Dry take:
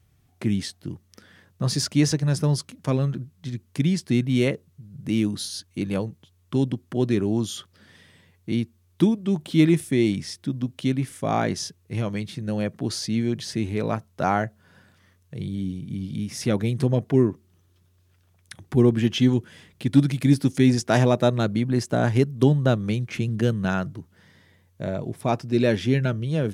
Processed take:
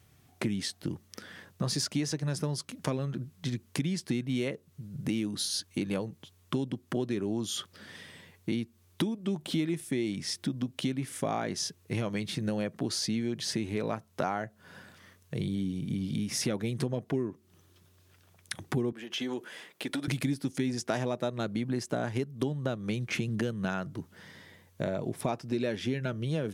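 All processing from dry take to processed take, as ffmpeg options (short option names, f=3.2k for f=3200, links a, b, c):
-filter_complex "[0:a]asettb=1/sr,asplit=3[a][b][c];[a]atrim=end=18.924[d];[b]atrim=start=18.92:end=20.08,asetpts=PTS-STARTPTS,afade=t=in:d=0.004:c=qsin,afade=t=out:st=1.156:d=0.004:c=qsin,highpass=430,equalizer=f=5.8k:w=0.48:g=-4.5,acompressor=threshold=-32dB:ratio=10:attack=3.2:release=140:knee=1:detection=peak[e];[c]atrim=start=20.076[f];[d][e]acrossfade=d=0.004:c1=hsin:c2=qsin[g];[g][f]acrossfade=d=0.004:c1=qsin:c2=hsin,highpass=f=190:p=1,acompressor=threshold=-34dB:ratio=6,volume=5.5dB"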